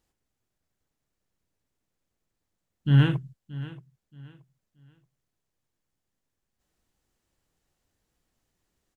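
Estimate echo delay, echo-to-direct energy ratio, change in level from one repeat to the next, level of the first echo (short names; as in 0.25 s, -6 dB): 0.627 s, -16.5 dB, -11.0 dB, -17.0 dB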